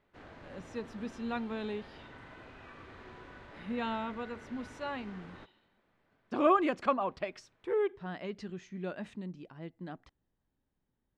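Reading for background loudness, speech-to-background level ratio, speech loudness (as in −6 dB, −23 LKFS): −51.5 LKFS, 16.0 dB, −35.5 LKFS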